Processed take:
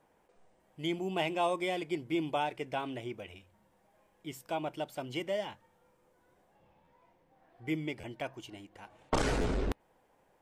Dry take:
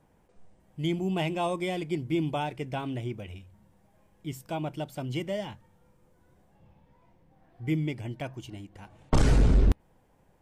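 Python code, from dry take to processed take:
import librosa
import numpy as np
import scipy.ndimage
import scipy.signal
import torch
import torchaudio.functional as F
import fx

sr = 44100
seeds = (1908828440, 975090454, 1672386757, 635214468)

y = fx.bass_treble(x, sr, bass_db=-14, treble_db=-3)
y = fx.buffer_glitch(y, sr, at_s=(6.84, 8.0, 9.41), block=512, repeats=2)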